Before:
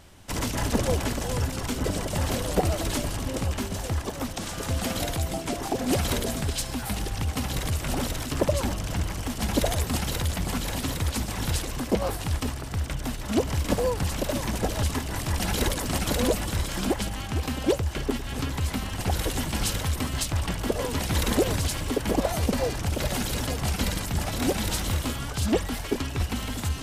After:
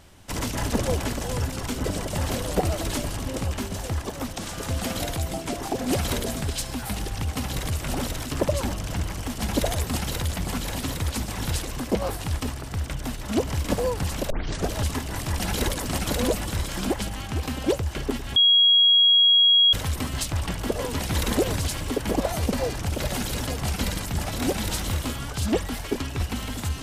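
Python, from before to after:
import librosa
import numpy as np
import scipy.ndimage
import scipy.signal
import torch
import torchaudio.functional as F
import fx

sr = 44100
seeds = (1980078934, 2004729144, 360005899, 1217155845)

y = fx.edit(x, sr, fx.tape_start(start_s=14.3, length_s=0.38),
    fx.bleep(start_s=18.36, length_s=1.37, hz=3300.0, db=-13.5), tone=tone)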